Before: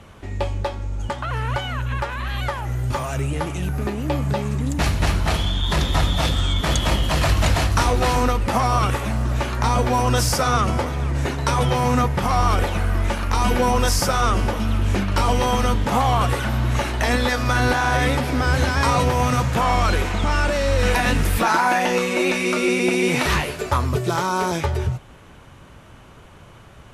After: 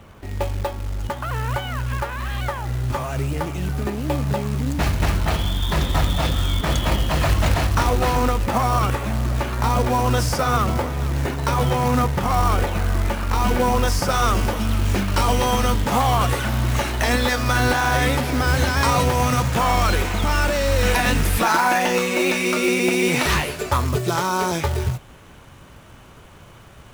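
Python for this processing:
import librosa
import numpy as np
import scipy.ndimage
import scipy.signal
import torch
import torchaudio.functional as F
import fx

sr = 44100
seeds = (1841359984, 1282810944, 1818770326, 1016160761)

y = fx.high_shelf(x, sr, hz=3700.0, db=fx.steps((0.0, -7.0), (14.09, 3.0)))
y = fx.quant_float(y, sr, bits=2)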